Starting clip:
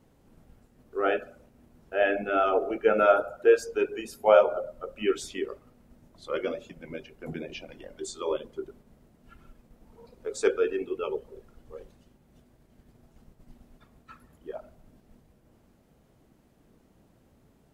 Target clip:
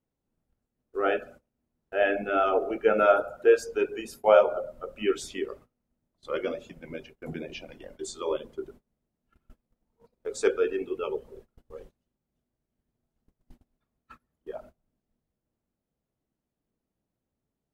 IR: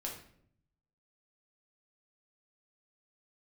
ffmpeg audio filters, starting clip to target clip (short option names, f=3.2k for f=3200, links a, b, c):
-af "agate=range=-23dB:threshold=-48dB:ratio=16:detection=peak"